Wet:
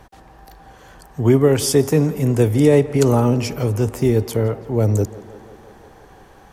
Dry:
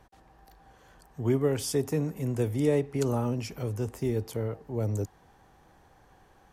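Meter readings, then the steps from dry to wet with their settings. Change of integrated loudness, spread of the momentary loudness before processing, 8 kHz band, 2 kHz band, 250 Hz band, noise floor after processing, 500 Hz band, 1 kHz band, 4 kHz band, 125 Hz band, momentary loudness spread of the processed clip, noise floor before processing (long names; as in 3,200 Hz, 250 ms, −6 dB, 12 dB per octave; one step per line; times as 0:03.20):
+12.5 dB, 8 LU, +12.5 dB, +12.5 dB, +12.5 dB, −47 dBFS, +12.5 dB, +12.5 dB, +12.5 dB, +12.5 dB, 7 LU, −60 dBFS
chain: tape delay 170 ms, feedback 77%, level −18 dB, low-pass 4,400 Hz
boost into a limiter +14.5 dB
level −2 dB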